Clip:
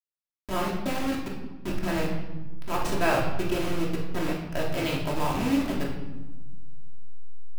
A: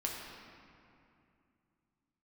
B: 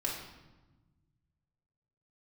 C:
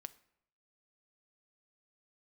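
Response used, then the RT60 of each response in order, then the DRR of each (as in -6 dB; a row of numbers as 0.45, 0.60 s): B; 2.6, 1.1, 0.75 s; -2.0, -3.5, 13.5 dB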